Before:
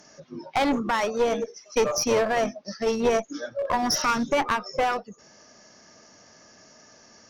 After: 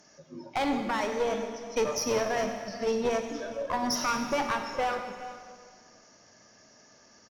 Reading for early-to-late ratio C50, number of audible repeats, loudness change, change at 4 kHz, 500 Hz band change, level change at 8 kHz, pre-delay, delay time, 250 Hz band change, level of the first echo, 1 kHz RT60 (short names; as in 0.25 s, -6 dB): 6.0 dB, 1, -5.0 dB, -5.0 dB, -5.0 dB, -5.0 dB, 24 ms, 0.412 s, -4.5 dB, -18.0 dB, 1.9 s